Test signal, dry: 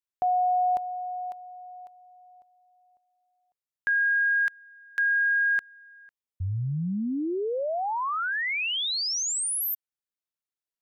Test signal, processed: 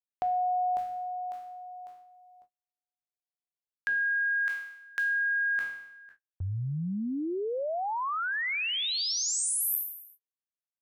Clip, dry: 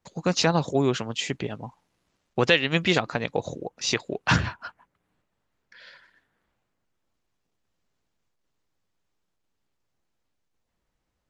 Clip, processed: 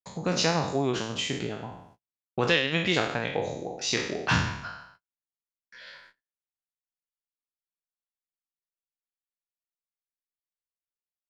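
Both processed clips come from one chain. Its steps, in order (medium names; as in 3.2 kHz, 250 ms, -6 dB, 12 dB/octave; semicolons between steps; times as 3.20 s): spectral sustain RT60 0.66 s; gate -54 dBFS, range -40 dB; in parallel at +1 dB: compression, threshold -36 dBFS; on the sum: trim -6.5 dB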